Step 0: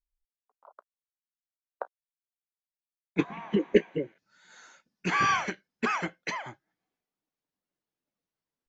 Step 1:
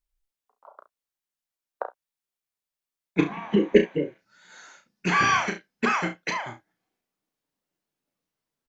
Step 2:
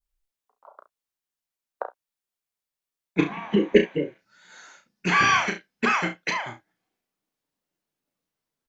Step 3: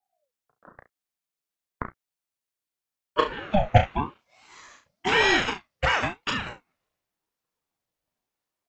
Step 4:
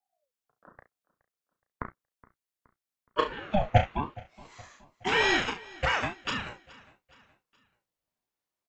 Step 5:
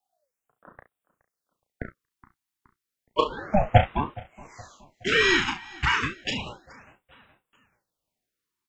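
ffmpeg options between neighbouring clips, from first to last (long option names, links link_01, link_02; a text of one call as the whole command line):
ffmpeg -i in.wav -af "aecho=1:1:34|68:0.473|0.2,volume=4dB" out.wav
ffmpeg -i in.wav -af "adynamicequalizer=threshold=0.02:dfrequency=2800:dqfactor=0.82:tfrequency=2800:tqfactor=0.82:attack=5:release=100:ratio=0.375:range=2:mode=boostabove:tftype=bell" out.wav
ffmpeg -i in.wav -af "aeval=exprs='val(0)*sin(2*PI*540*n/s+540*0.45/0.94*sin(2*PI*0.94*n/s))':channel_layout=same,volume=2dB" out.wav
ffmpeg -i in.wav -af "aecho=1:1:420|840|1260:0.075|0.0352|0.0166,volume=-4dB" out.wav
ffmpeg -i in.wav -af "afftfilt=real='re*(1-between(b*sr/1024,500*pow(5700/500,0.5+0.5*sin(2*PI*0.31*pts/sr))/1.41,500*pow(5700/500,0.5+0.5*sin(2*PI*0.31*pts/sr))*1.41))':imag='im*(1-between(b*sr/1024,500*pow(5700/500,0.5+0.5*sin(2*PI*0.31*pts/sr))/1.41,500*pow(5700/500,0.5+0.5*sin(2*PI*0.31*pts/sr))*1.41))':win_size=1024:overlap=0.75,volume=4.5dB" out.wav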